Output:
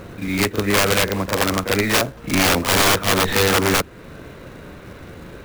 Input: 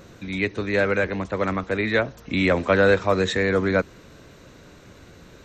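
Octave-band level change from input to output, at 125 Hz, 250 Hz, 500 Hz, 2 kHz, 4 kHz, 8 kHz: +4.0 dB, +3.0 dB, 0.0 dB, +3.5 dB, +13.0 dB, can't be measured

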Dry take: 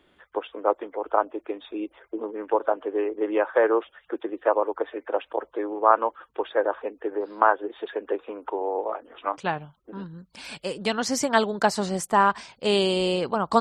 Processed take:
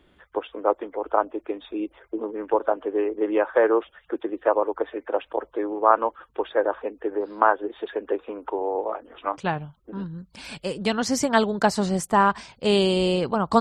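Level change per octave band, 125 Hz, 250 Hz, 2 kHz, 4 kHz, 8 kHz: +5.0, +3.5, 0.0, 0.0, 0.0 decibels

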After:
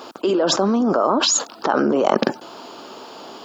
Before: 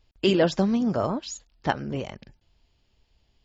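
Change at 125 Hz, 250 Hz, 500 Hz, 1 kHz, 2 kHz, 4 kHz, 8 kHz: −2.5 dB, +5.0 dB, +7.5 dB, +11.0 dB, +6.0 dB, +11.0 dB, can't be measured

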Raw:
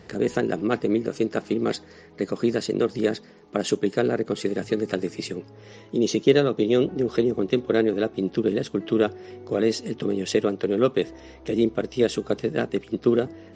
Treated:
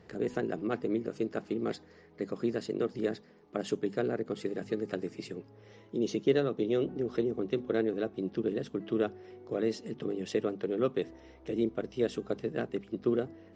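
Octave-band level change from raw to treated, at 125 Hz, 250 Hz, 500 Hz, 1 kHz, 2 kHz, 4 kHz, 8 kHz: −9.0 dB, −9.0 dB, −8.5 dB, −9.0 dB, −10.0 dB, −12.5 dB, below −10 dB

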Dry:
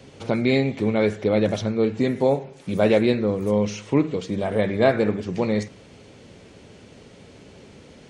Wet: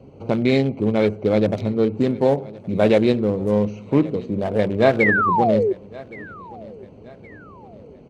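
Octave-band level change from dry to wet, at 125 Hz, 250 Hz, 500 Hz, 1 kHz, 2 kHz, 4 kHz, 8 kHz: +2.5 dB, +2.5 dB, +2.5 dB, +7.5 dB, +6.5 dB, −0.5 dB, can't be measured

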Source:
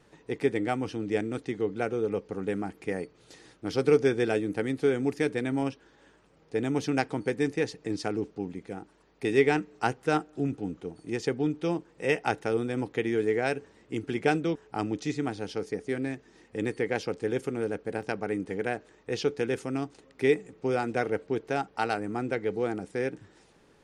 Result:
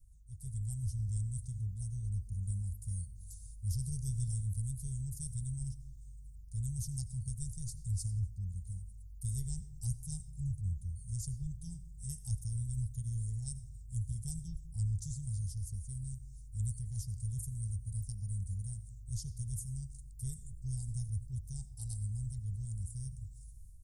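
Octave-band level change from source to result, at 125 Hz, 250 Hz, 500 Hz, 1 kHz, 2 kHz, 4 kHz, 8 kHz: +3.0 dB, −20.0 dB, below −40 dB, below −40 dB, below −40 dB, −16.5 dB, +4.5 dB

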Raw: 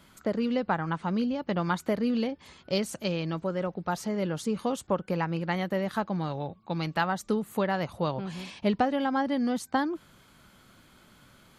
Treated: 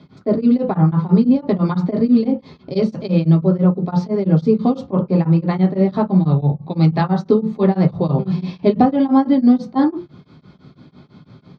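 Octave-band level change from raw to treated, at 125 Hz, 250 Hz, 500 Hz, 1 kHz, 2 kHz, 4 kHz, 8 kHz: +18.0 dB, +15.0 dB, +10.5 dB, +6.0 dB, −1.5 dB, 0.0 dB, below −10 dB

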